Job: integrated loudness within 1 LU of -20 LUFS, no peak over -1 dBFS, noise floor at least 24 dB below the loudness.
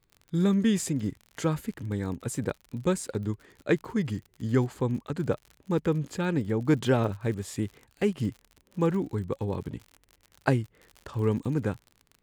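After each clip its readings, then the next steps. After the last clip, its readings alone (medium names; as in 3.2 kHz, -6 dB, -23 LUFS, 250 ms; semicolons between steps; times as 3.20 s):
tick rate 54 per s; loudness -29.5 LUFS; peak level -7.0 dBFS; loudness target -20.0 LUFS
-> de-click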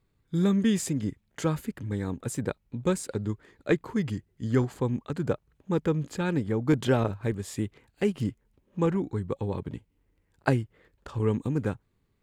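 tick rate 0.25 per s; loudness -29.5 LUFS; peak level -7.0 dBFS; loudness target -20.0 LUFS
-> trim +9.5 dB; peak limiter -1 dBFS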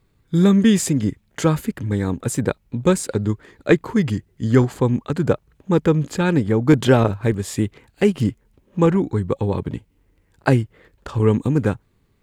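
loudness -20.0 LUFS; peak level -1.0 dBFS; noise floor -63 dBFS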